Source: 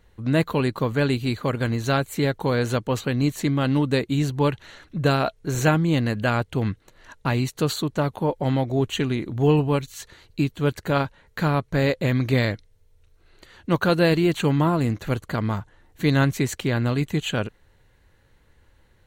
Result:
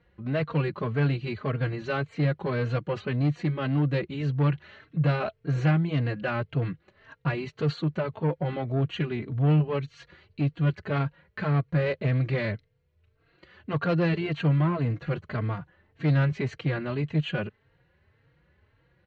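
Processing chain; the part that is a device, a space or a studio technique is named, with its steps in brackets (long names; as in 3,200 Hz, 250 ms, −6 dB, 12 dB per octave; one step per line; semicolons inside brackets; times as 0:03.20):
barber-pole flanger into a guitar amplifier (barber-pole flanger 3.8 ms +1.8 Hz; soft clipping −20 dBFS, distortion −13 dB; loudspeaker in its box 76–3,900 Hz, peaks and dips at 150 Hz +7 dB, 250 Hz −5 dB, 880 Hz −5 dB, 3,600 Hz −7 dB)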